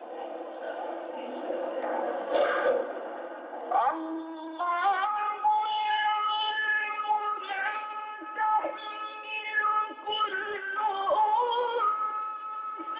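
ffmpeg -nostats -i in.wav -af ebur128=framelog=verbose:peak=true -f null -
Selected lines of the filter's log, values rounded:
Integrated loudness:
  I:         -29.4 LUFS
  Threshold: -39.4 LUFS
Loudness range:
  LRA:         2.8 LU
  Threshold: -49.1 LUFS
  LRA low:   -30.5 LUFS
  LRA high:  -27.7 LUFS
True peak:
  Peak:      -15.1 dBFS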